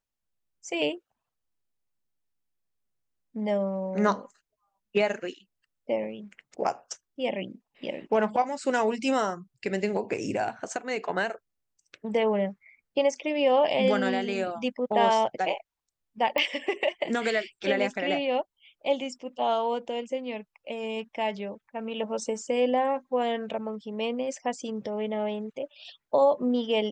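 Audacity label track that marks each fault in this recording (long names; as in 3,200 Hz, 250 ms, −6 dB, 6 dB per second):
16.380000	16.380000	click −14 dBFS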